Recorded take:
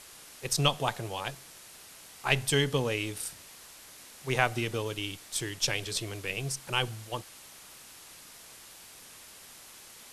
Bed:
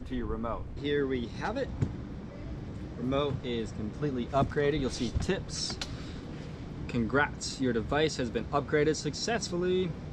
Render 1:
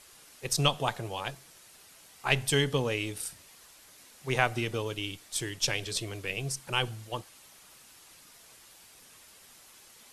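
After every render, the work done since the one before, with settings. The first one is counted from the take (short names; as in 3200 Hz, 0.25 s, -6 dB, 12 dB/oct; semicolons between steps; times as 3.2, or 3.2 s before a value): denoiser 6 dB, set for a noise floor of -51 dBFS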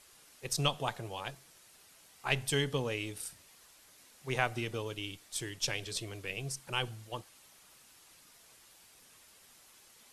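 gain -5 dB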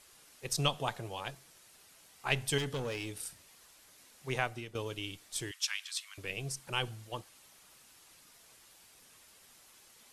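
2.58–3.21 hard clip -32 dBFS; 4.28–4.75 fade out, to -12.5 dB; 5.51–6.18 steep high-pass 1100 Hz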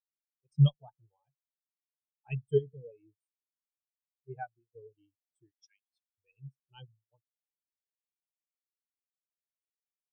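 spectral expander 4:1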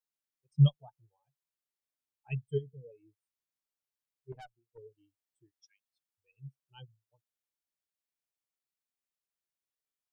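2.43–2.89 bell 440 Hz -> 1400 Hz -8 dB 2.9 oct; 4.32–4.78 tube stage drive 46 dB, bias 0.65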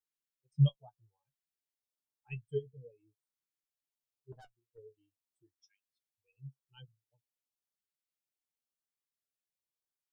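flange 0.29 Hz, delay 6.1 ms, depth 6.5 ms, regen +34%; LFO notch saw up 0.9 Hz 590–2500 Hz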